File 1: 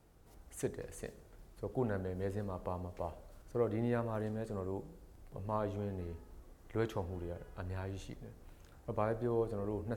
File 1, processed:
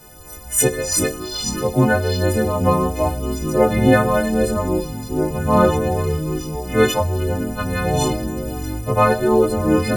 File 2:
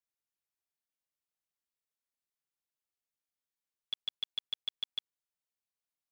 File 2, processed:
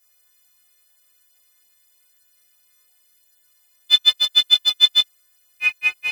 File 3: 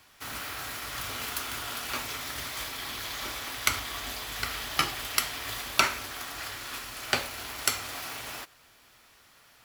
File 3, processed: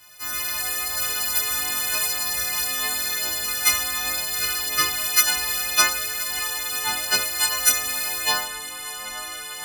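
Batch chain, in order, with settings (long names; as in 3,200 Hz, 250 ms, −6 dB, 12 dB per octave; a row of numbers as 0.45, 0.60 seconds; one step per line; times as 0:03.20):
every partial snapped to a pitch grid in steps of 3 semitones
multi-voice chorus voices 2, 0.9 Hz, delay 14 ms, depth 1.4 ms
delay with pitch and tempo change per echo 93 ms, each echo −6 semitones, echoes 2, each echo −6 dB
normalise the peak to −2 dBFS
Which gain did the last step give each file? +23.0, +22.0, +3.0 decibels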